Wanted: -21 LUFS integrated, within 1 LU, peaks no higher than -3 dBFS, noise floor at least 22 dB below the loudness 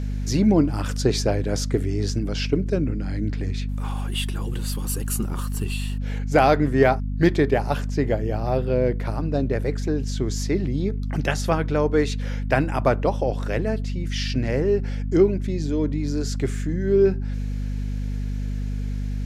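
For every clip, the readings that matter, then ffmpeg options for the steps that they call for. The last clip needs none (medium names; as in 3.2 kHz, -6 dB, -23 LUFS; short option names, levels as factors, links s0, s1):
hum 50 Hz; highest harmonic 250 Hz; hum level -24 dBFS; loudness -24.0 LUFS; peak level -4.5 dBFS; loudness target -21.0 LUFS
-> -af "bandreject=f=50:t=h:w=6,bandreject=f=100:t=h:w=6,bandreject=f=150:t=h:w=6,bandreject=f=200:t=h:w=6,bandreject=f=250:t=h:w=6"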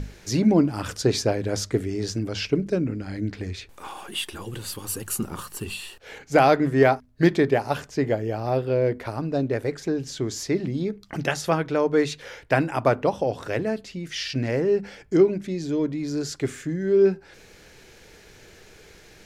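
hum not found; loudness -24.5 LUFS; peak level -5.5 dBFS; loudness target -21.0 LUFS
-> -af "volume=1.5,alimiter=limit=0.708:level=0:latency=1"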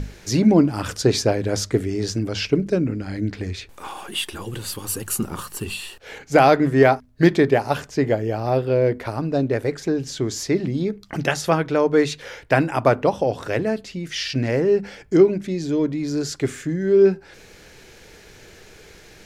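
loudness -21.0 LUFS; peak level -3.0 dBFS; noise floor -47 dBFS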